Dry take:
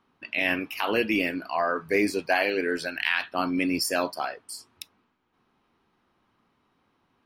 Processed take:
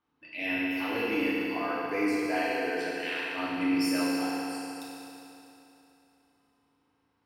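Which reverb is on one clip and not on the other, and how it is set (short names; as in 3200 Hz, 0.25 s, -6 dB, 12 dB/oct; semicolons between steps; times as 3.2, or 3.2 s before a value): FDN reverb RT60 3.1 s, high-frequency decay 0.95×, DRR -8 dB; gain -14 dB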